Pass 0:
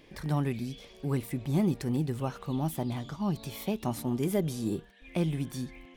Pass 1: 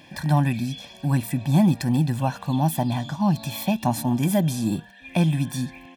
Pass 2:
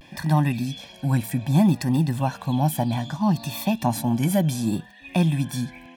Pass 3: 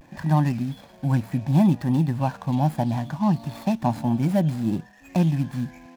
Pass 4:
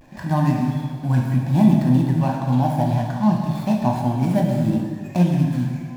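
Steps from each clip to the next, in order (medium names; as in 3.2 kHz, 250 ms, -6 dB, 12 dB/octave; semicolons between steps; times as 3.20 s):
high-pass 120 Hz 12 dB/octave; comb 1.2 ms, depth 95%; trim +7 dB
vibrato 0.65 Hz 61 cents
median filter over 15 samples
plate-style reverb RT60 1.8 s, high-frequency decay 0.75×, DRR -0.5 dB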